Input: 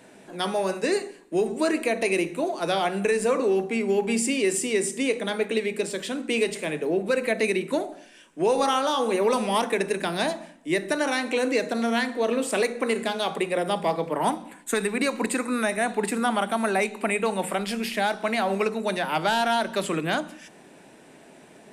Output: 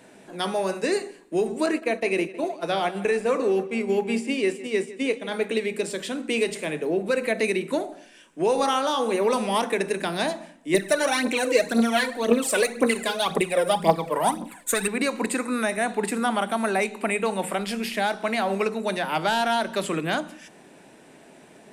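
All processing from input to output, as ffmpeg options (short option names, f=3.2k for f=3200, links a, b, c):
-filter_complex "[0:a]asettb=1/sr,asplit=3[a][b][c];[a]atrim=end=1.664[d];[b]atrim=start=1.66:end=5.32,asetpts=PTS-STARTPTS,afade=t=in:d=0.004:c=qsin,afade=t=out:st=3.656:d=0.004:c=qsin,acrossover=split=4100[e][f];[f]acompressor=threshold=-41dB:ratio=4:attack=1:release=60[g];[e][g]amix=inputs=2:normalize=0,agate=range=-33dB:threshold=-25dB:ratio=3:release=100:detection=peak,asplit=2[h][i];[i]adelay=157,lowpass=f=4.4k:p=1,volume=-16.5dB,asplit=2[j][k];[k]adelay=157,lowpass=f=4.4k:p=1,volume=0.5,asplit=2[l][m];[m]adelay=157,lowpass=f=4.4k:p=1,volume=0.5,asplit=2[n][o];[o]adelay=157,lowpass=f=4.4k:p=1,volume=0.5[p];[h][j][l][n][p]amix=inputs=5:normalize=0,atrim=end_sample=161406[q];[c]atrim=start=5.316[r];[d][q]acrossfade=d=0.004:c1=hsin:c2=qsin[s];[s][r]acrossfade=d=0.004:c1=qsin:c2=hsin,asettb=1/sr,asplit=3[t][u][v];[t]atrim=end=10.744[w];[u]atrim=start=10.74:end=14.88,asetpts=PTS-STARTPTS,afade=t=in:d=0.004:c=qsin,afade=t=out:st=4.136:d=0.004:c=qsin,highshelf=f=9.4k:g=9.5,aphaser=in_gain=1:out_gain=1:delay=2.2:decay=0.66:speed=1.9:type=triangular[x];[v]atrim=start=14.876[y];[w][x]acrossfade=d=0.004:c1=hsin:c2=qsin[z];[z][y]acrossfade=d=0.004:c1=qsin:c2=hsin"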